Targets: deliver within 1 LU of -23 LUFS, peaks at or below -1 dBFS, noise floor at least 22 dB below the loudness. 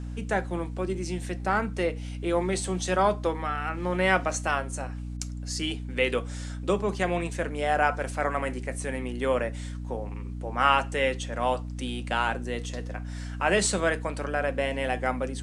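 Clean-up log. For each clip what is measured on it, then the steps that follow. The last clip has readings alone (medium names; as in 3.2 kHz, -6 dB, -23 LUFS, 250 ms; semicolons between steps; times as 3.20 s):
hum 60 Hz; highest harmonic 300 Hz; hum level -33 dBFS; loudness -28.5 LUFS; peak level -8.0 dBFS; loudness target -23.0 LUFS
-> hum notches 60/120/180/240/300 Hz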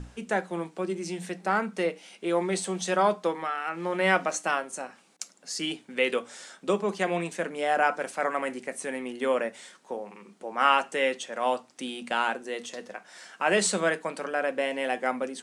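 hum not found; loudness -28.5 LUFS; peak level -7.5 dBFS; loudness target -23.0 LUFS
-> trim +5.5 dB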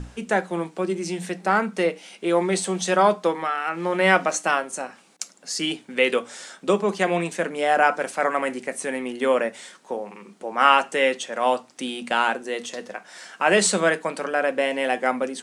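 loudness -23.0 LUFS; peak level -2.0 dBFS; noise floor -53 dBFS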